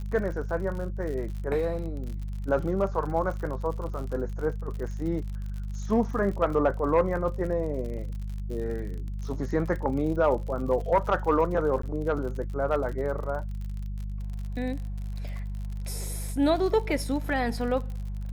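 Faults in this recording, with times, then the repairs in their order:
crackle 58/s -35 dBFS
hum 50 Hz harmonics 4 -33 dBFS
11.82–11.83 gap 14 ms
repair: de-click; de-hum 50 Hz, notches 4; interpolate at 11.82, 14 ms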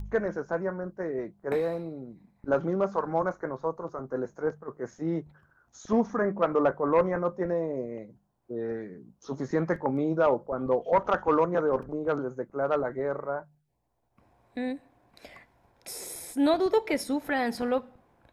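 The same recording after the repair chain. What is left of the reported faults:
none

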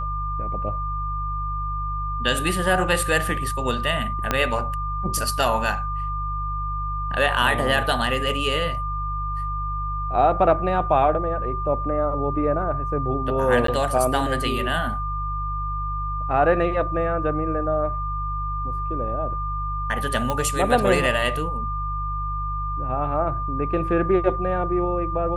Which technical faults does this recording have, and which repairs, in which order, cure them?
hum 50 Hz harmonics 3 -29 dBFS
tone 1200 Hz -27 dBFS
4.31 pop -6 dBFS
13.67–13.68 gap 13 ms
20.3 pop -11 dBFS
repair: de-click; de-hum 50 Hz, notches 3; notch 1200 Hz, Q 30; interpolate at 13.67, 13 ms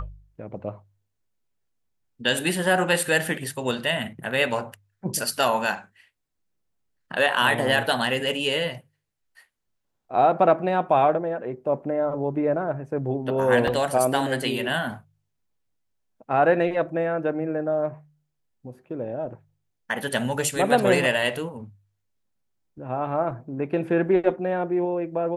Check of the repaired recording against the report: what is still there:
4.31 pop

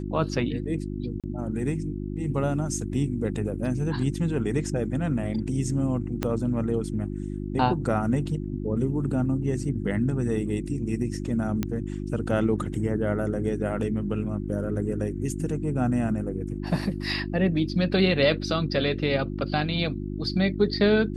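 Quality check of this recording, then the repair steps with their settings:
hum 50 Hz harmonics 7 -32 dBFS
1.2–1.24 gap 37 ms
6.23 pop -11 dBFS
11.63 pop -13 dBFS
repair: de-click; de-hum 50 Hz, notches 7; interpolate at 1.2, 37 ms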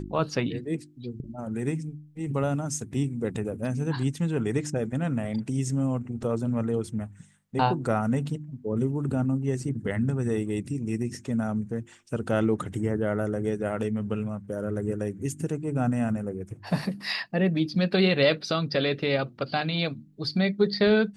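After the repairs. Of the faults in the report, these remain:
6.23 pop

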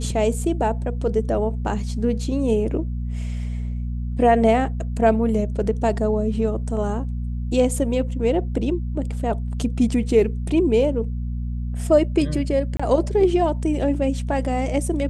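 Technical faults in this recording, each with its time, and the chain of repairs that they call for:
hum 60 Hz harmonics 4 -26 dBFS
12.77–12.79 gap 25 ms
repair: de-hum 60 Hz, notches 4; interpolate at 12.77, 25 ms

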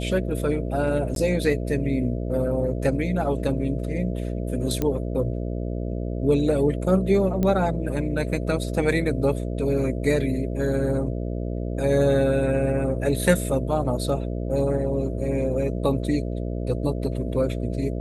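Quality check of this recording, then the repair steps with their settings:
buzz 60 Hz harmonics 11 -28 dBFS
1.15–1.16 gap 12 ms
4.82 pop -11 dBFS
7.43 pop -13 dBFS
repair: de-click; de-hum 60 Hz, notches 11; interpolate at 1.15, 12 ms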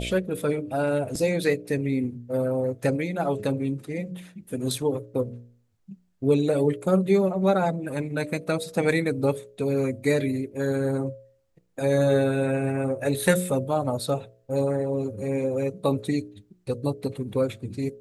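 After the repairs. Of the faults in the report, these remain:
none

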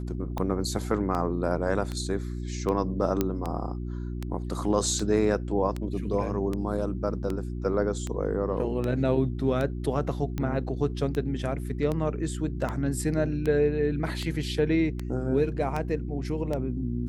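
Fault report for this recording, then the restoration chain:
hum 60 Hz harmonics 6 -33 dBFS
tick 78 rpm -18 dBFS
3.21 pop -11 dBFS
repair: de-click; de-hum 60 Hz, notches 6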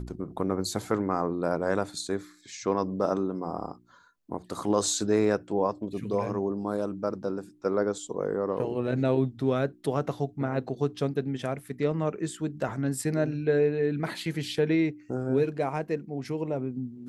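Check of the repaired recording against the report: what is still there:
none

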